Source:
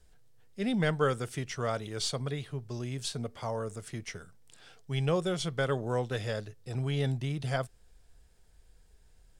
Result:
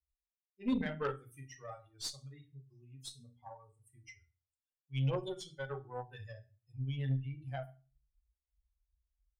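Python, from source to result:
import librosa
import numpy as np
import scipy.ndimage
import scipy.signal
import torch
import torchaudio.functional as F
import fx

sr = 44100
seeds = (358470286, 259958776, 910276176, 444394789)

y = fx.bin_expand(x, sr, power=3.0)
y = fx.rev_fdn(y, sr, rt60_s=0.33, lf_ratio=1.6, hf_ratio=0.9, size_ms=23.0, drr_db=1.5)
y = fx.cheby_harmonics(y, sr, harmonics=(2, 4, 6, 7), levels_db=(-16, -14, -34, -38), full_scale_db=-17.0)
y = F.gain(torch.from_numpy(y), -6.5).numpy()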